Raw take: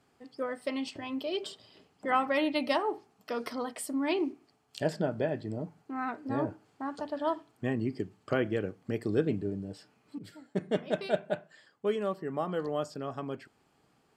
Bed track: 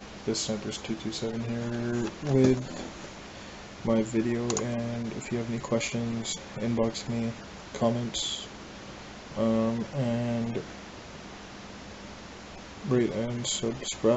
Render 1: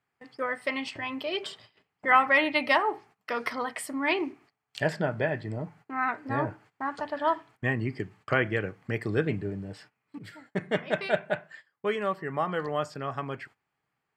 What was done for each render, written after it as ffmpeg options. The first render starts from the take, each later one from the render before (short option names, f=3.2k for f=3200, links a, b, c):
-af "agate=range=-18dB:threshold=-55dB:ratio=16:detection=peak,equalizer=f=125:t=o:w=1:g=6,equalizer=f=250:t=o:w=1:g=-3,equalizer=f=1k:t=o:w=1:g=5,equalizer=f=2k:t=o:w=1:g=12"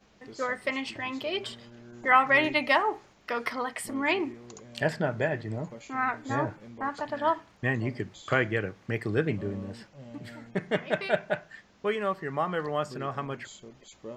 -filter_complex "[1:a]volume=-18dB[a];[0:a][a]amix=inputs=2:normalize=0"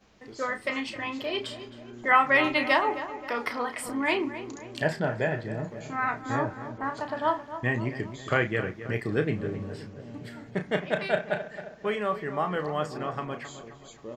-filter_complex "[0:a]asplit=2[a][b];[b]adelay=33,volume=-9dB[c];[a][c]amix=inputs=2:normalize=0,asplit=2[d][e];[e]adelay=266,lowpass=f=2.1k:p=1,volume=-11.5dB,asplit=2[f][g];[g]adelay=266,lowpass=f=2.1k:p=1,volume=0.54,asplit=2[h][i];[i]adelay=266,lowpass=f=2.1k:p=1,volume=0.54,asplit=2[j][k];[k]adelay=266,lowpass=f=2.1k:p=1,volume=0.54,asplit=2[l][m];[m]adelay=266,lowpass=f=2.1k:p=1,volume=0.54,asplit=2[n][o];[o]adelay=266,lowpass=f=2.1k:p=1,volume=0.54[p];[f][h][j][l][n][p]amix=inputs=6:normalize=0[q];[d][q]amix=inputs=2:normalize=0"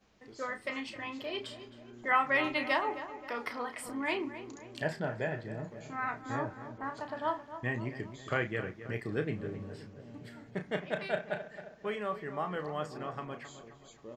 -af "volume=-7dB"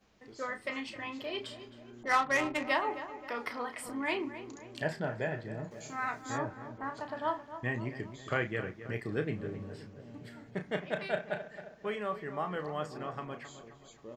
-filter_complex "[0:a]asettb=1/sr,asplit=3[a][b][c];[a]atrim=end=2.034[d];[b]atrim=start=2.03:end=2.68,asetpts=PTS-STARTPTS,afade=t=in:d=0.004:c=qsin,afade=t=out:st=0.646:d=0.004:c=qsin,adynamicsmooth=sensitivity=3:basefreq=830[e];[c]atrim=start=2.676[f];[d][e]acrossfade=d=0.004:c1=hsin:c2=qsin[g];[g][f]acrossfade=d=0.004:c1=qsin:c2=hsin,asettb=1/sr,asplit=3[h][i][j];[h]atrim=end=5.714[k];[i]atrim=start=5.71:end=6.38,asetpts=PTS-STARTPTS,afade=t=in:d=0.004:c=qsin,afade=t=out:st=0.666:d=0.004:c=qsin,bass=f=250:g=-3,treble=f=4k:g=13[l];[j]atrim=start=6.376[m];[k][l]acrossfade=d=0.004:c1=hsin:c2=qsin[n];[n][m]acrossfade=d=0.004:c1=qsin:c2=hsin"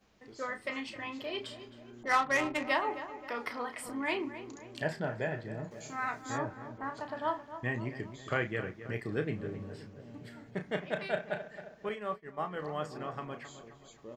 -filter_complex "[0:a]asettb=1/sr,asplit=3[a][b][c];[a]atrim=end=11.894[d];[b]atrim=start=11.89:end=12.62,asetpts=PTS-STARTPTS,afade=t=in:d=0.004:c=qsin,afade=t=out:st=0.726:d=0.004:c=qsin,agate=range=-33dB:threshold=-34dB:ratio=3:release=100:detection=peak[e];[c]atrim=start=12.616[f];[d][e]acrossfade=d=0.004:c1=hsin:c2=qsin[g];[g][f]acrossfade=d=0.004:c1=qsin:c2=hsin"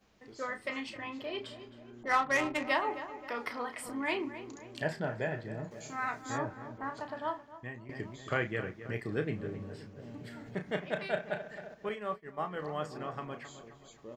-filter_complex "[0:a]asettb=1/sr,asplit=3[a][b][c];[a]atrim=end=0.974[d];[b]atrim=start=0.97:end=2.29,asetpts=PTS-STARTPTS,afade=t=in:d=0.004:c=qsin,afade=t=out:st=1.316:d=0.004:c=qsin,highshelf=f=3.6k:g=-6[e];[c]atrim=start=2.286[f];[d][e]acrossfade=d=0.004:c1=hsin:c2=qsin[g];[g][f]acrossfade=d=0.004:c1=qsin:c2=hsin,asplit=3[h][i][j];[h]afade=t=out:st=9.97:d=0.02[k];[i]acompressor=mode=upward:threshold=-39dB:ratio=2.5:attack=3.2:release=140:knee=2.83:detection=peak,afade=t=in:st=9.97:d=0.02,afade=t=out:st=11.73:d=0.02[l];[j]afade=t=in:st=11.73:d=0.02[m];[k][l][m]amix=inputs=3:normalize=0,asplit=2[n][o];[n]atrim=end=7.89,asetpts=PTS-STARTPTS,afade=t=out:st=6.99:d=0.9:silence=0.16788[p];[o]atrim=start=7.89,asetpts=PTS-STARTPTS,afade=t=in:d=0.004:c=hsin:silence=0.16788[q];[p][q]concat=n=2:v=0:a=1"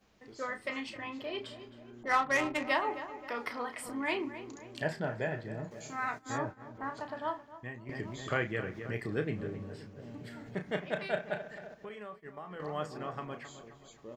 -filter_complex "[0:a]asplit=3[a][b][c];[a]afade=t=out:st=6.17:d=0.02[d];[b]agate=range=-33dB:threshold=-41dB:ratio=3:release=100:detection=peak,afade=t=in:st=6.17:d=0.02,afade=t=out:st=6.74:d=0.02[e];[c]afade=t=in:st=6.74:d=0.02[f];[d][e][f]amix=inputs=3:normalize=0,asplit=3[g][h][i];[g]afade=t=out:st=7.86:d=0.02[j];[h]acompressor=mode=upward:threshold=-33dB:ratio=2.5:attack=3.2:release=140:knee=2.83:detection=peak,afade=t=in:st=7.86:d=0.02,afade=t=out:st=9.47:d=0.02[k];[i]afade=t=in:st=9.47:d=0.02[l];[j][k][l]amix=inputs=3:normalize=0,asettb=1/sr,asplit=3[m][n][o];[m]atrim=end=11.544[p];[n]atrim=start=11.54:end=12.6,asetpts=PTS-STARTPTS,afade=t=in:d=0.004:c=qsin,afade=t=out:st=1.056:d=0.004:c=qsin,acompressor=threshold=-40dB:ratio=6:attack=3.2:release=140:knee=1:detection=peak[q];[o]atrim=start=12.596[r];[p][q]acrossfade=d=0.004:c1=hsin:c2=qsin[s];[s][r]acrossfade=d=0.004:c1=qsin:c2=hsin"